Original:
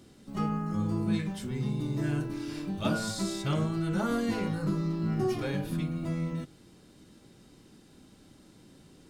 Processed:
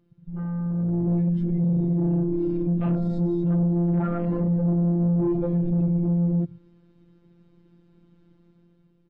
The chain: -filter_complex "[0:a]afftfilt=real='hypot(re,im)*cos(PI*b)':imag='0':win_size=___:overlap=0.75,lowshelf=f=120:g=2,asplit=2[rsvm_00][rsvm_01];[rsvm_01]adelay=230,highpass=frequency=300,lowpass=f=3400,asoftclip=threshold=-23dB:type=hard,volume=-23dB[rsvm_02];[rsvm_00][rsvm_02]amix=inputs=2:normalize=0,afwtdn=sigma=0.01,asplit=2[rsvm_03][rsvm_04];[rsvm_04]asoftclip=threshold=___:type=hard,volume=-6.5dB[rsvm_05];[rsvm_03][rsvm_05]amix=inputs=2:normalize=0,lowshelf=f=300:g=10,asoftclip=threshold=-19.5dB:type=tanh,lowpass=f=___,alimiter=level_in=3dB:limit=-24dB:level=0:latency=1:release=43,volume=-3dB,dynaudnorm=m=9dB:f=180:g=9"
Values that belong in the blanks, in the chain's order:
1024, -31dB, 2400